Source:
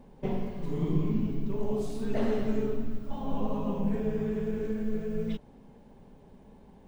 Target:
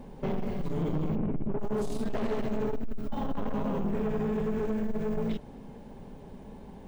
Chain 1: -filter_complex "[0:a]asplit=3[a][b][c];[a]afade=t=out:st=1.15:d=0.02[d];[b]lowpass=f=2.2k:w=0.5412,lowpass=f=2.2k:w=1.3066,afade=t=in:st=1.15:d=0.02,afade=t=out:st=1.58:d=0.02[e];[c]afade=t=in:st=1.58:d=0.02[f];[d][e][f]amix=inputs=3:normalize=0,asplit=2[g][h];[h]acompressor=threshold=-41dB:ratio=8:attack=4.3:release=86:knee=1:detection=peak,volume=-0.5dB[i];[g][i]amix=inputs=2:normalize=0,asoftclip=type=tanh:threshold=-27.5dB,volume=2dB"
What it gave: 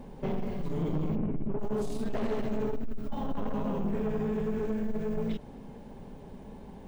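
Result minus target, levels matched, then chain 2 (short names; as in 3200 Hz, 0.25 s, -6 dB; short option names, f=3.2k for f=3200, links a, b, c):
compressor: peak gain reduction +8.5 dB
-filter_complex "[0:a]asplit=3[a][b][c];[a]afade=t=out:st=1.15:d=0.02[d];[b]lowpass=f=2.2k:w=0.5412,lowpass=f=2.2k:w=1.3066,afade=t=in:st=1.15:d=0.02,afade=t=out:st=1.58:d=0.02[e];[c]afade=t=in:st=1.58:d=0.02[f];[d][e][f]amix=inputs=3:normalize=0,asplit=2[g][h];[h]acompressor=threshold=-31dB:ratio=8:attack=4.3:release=86:knee=1:detection=peak,volume=-0.5dB[i];[g][i]amix=inputs=2:normalize=0,asoftclip=type=tanh:threshold=-27.5dB,volume=2dB"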